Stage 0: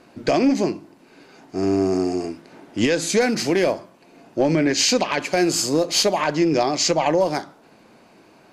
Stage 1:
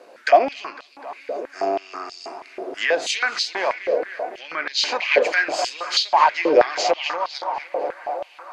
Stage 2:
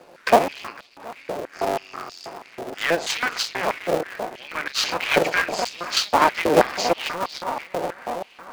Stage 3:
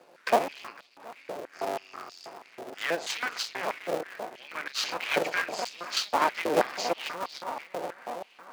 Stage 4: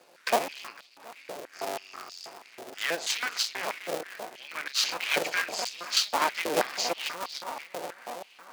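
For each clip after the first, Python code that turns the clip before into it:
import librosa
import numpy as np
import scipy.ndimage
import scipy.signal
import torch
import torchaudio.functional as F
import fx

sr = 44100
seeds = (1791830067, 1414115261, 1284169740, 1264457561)

y1 = fx.env_lowpass_down(x, sr, base_hz=2600.0, full_db=-15.0)
y1 = fx.echo_tape(y1, sr, ms=252, feedback_pct=89, wet_db=-11.0, lp_hz=3300.0, drive_db=6.0, wow_cents=12)
y1 = fx.filter_held_highpass(y1, sr, hz=6.2, low_hz=510.0, high_hz=3900.0)
y2 = fx.cycle_switch(y1, sr, every=3, mode='muted')
y3 = fx.highpass(y2, sr, hz=230.0, slope=6)
y3 = F.gain(torch.from_numpy(y3), -7.5).numpy()
y4 = fx.high_shelf(y3, sr, hz=2300.0, db=10.5)
y4 = F.gain(torch.from_numpy(y4), -3.5).numpy()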